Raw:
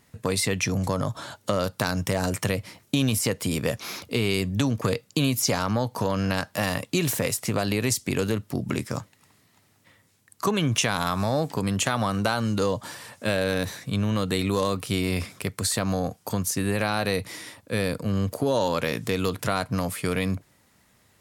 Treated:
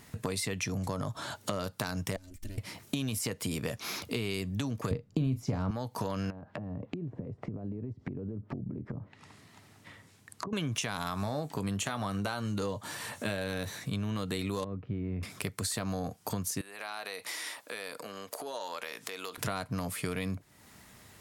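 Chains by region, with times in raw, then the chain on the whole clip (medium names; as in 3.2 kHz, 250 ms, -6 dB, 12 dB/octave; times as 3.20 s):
2.16–2.58 s: comb filter that takes the minimum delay 3.3 ms + amplifier tone stack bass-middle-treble 10-0-1
4.91–5.71 s: tilt EQ -4.5 dB/octave + doubling 38 ms -12 dB
6.30–10.53 s: treble shelf 5.4 kHz -6.5 dB + compression, threshold -32 dBFS + low-pass that closes with the level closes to 370 Hz, closed at -33 dBFS
11.20–13.85 s: band-stop 5 kHz, Q 11 + doubling 20 ms -12.5 dB
14.64–15.23 s: low-pass 1.8 kHz 24 dB/octave + peaking EQ 1.2 kHz -15 dB 2.8 oct
16.61–19.38 s: compression 3:1, threshold -36 dBFS + high-pass 600 Hz
whole clip: band-stop 530 Hz, Q 12; compression 3:1, threshold -43 dBFS; trim +6.5 dB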